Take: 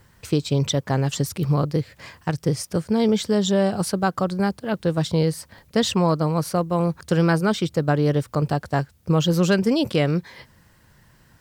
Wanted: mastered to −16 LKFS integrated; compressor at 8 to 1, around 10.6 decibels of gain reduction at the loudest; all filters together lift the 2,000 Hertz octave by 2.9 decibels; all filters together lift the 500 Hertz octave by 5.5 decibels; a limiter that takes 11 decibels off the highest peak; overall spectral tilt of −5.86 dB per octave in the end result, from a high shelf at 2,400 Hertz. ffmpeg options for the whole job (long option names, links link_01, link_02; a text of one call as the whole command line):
ffmpeg -i in.wav -af "equalizer=frequency=500:width_type=o:gain=6.5,equalizer=frequency=2000:width_type=o:gain=6,highshelf=frequency=2400:gain=-5.5,acompressor=threshold=-23dB:ratio=8,volume=15.5dB,alimiter=limit=-6.5dB:level=0:latency=1" out.wav